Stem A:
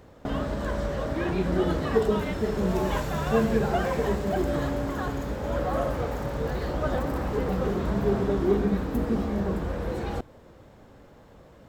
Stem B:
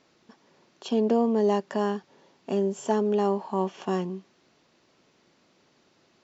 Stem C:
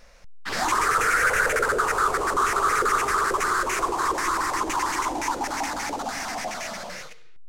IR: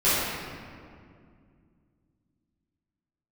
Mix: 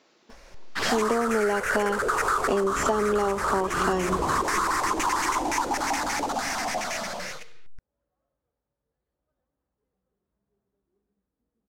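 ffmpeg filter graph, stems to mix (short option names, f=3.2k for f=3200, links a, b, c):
-filter_complex "[0:a]adelay=2450,volume=-1dB[a];[1:a]dynaudnorm=f=130:g=17:m=14dB,highpass=270,volume=2.5dB,asplit=2[b][c];[2:a]adelay=300,volume=2dB[d];[c]apad=whole_len=623315[e];[a][e]sidechaingate=range=-54dB:threshold=-48dB:ratio=16:detection=peak[f];[f][b][d]amix=inputs=3:normalize=0,acompressor=threshold=-20dB:ratio=16"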